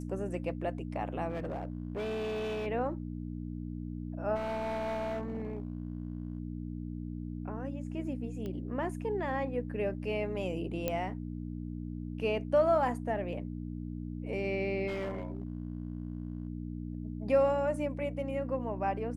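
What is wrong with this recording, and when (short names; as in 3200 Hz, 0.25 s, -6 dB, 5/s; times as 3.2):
hum 60 Hz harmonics 5 -39 dBFS
1.3–2.67 clipped -32 dBFS
4.35–6.38 clipped -32 dBFS
8.46 pop -28 dBFS
10.88 pop -17 dBFS
14.87–16.48 clipped -32 dBFS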